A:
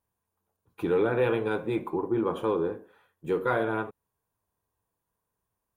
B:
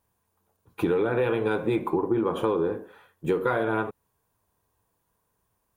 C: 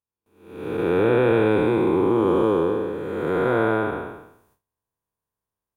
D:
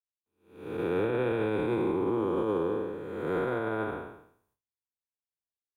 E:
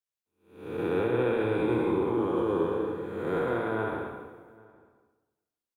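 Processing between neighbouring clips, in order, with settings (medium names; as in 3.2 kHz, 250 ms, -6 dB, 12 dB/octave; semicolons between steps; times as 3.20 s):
compression 10:1, threshold -29 dBFS, peak gain reduction 9.5 dB; trim +8.5 dB
spectral blur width 499 ms; gate with hold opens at -60 dBFS; level rider gain up to 9 dB
peak limiter -14 dBFS, peak gain reduction 6 dB; three bands expanded up and down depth 40%; trim -6.5 dB
echo from a far wall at 140 m, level -24 dB; on a send at -3 dB: reverberation RT60 1.1 s, pre-delay 58 ms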